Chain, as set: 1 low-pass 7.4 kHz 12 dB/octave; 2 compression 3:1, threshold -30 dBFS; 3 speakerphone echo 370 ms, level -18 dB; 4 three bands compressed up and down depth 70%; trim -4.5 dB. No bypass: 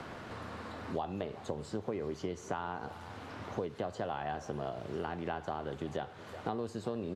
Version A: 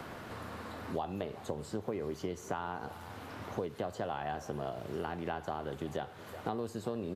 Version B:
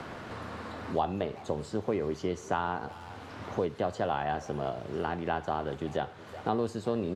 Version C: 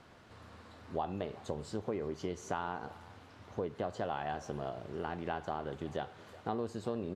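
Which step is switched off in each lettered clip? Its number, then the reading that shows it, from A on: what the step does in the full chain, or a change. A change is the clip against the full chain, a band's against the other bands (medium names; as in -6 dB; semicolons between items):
1, 8 kHz band +2.0 dB; 2, 8 kHz band -2.0 dB; 4, momentary loudness spread change +10 LU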